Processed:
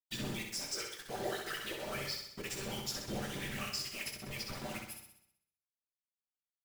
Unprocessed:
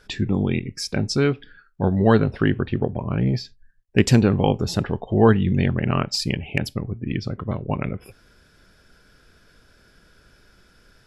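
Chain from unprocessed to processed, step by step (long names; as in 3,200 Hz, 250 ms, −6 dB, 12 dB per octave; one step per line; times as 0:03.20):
first-order pre-emphasis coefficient 0.97
gain on a spectral selection 0:00.99–0:03.74, 420–10,000 Hz +11 dB
parametric band 1,000 Hz −14.5 dB 0.26 octaves
downward compressor 16 to 1, threshold −42 dBFS, peak gain reduction 27 dB
all-pass dispersion highs, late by 125 ms, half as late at 810 Hz
time stretch by phase vocoder 0.6×
bit reduction 9 bits
random phases in short frames
flutter between parallel walls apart 10.9 metres, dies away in 0.72 s
on a send at −4 dB: convolution reverb RT60 0.35 s, pre-delay 5 ms
on the sum: level +8 dB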